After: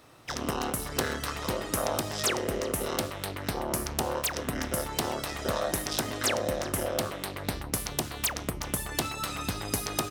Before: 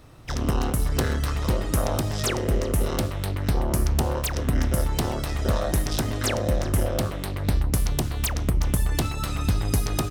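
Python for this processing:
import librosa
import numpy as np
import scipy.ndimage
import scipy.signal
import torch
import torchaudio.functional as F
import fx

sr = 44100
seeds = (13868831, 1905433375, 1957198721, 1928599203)

y = fx.highpass(x, sr, hz=450.0, slope=6)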